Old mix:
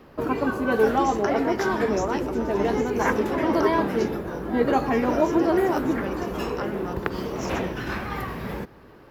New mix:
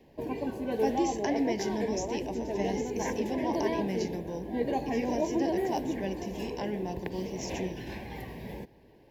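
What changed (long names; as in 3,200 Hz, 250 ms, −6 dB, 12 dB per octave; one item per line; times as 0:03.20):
background −8.5 dB
master: add Butterworth band-reject 1,300 Hz, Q 1.5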